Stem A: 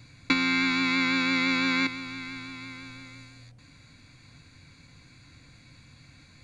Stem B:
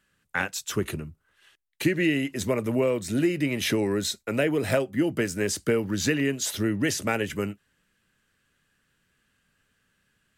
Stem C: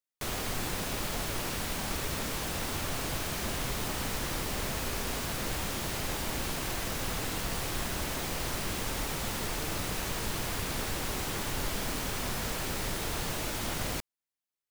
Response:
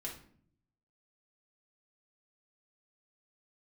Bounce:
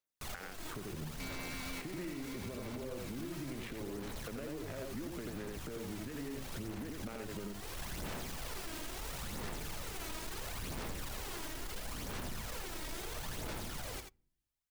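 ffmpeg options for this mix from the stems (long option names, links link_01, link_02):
-filter_complex "[0:a]asoftclip=type=hard:threshold=-27dB,adelay=900,volume=-13.5dB[link_01];[1:a]acompressor=threshold=-26dB:ratio=6,acrusher=bits=8:mix=0:aa=0.000001,adynamicsmooth=sensitivity=2:basefreq=550,volume=1dB,asplit=2[link_02][link_03];[link_03]volume=-10.5dB[link_04];[2:a]alimiter=level_in=7dB:limit=-24dB:level=0:latency=1,volume=-7dB,aphaser=in_gain=1:out_gain=1:delay=3.2:decay=0.54:speed=0.74:type=sinusoidal,asoftclip=type=tanh:threshold=-33dB,volume=-3.5dB,asplit=3[link_05][link_06][link_07];[link_06]volume=-18dB[link_08];[link_07]volume=-6.5dB[link_09];[link_01][link_02]amix=inputs=2:normalize=0,acompressor=threshold=-33dB:ratio=6,volume=0dB[link_10];[3:a]atrim=start_sample=2205[link_11];[link_08][link_11]afir=irnorm=-1:irlink=0[link_12];[link_04][link_09]amix=inputs=2:normalize=0,aecho=0:1:84:1[link_13];[link_05][link_10][link_12][link_13]amix=inputs=4:normalize=0,alimiter=level_in=9.5dB:limit=-24dB:level=0:latency=1:release=249,volume=-9.5dB"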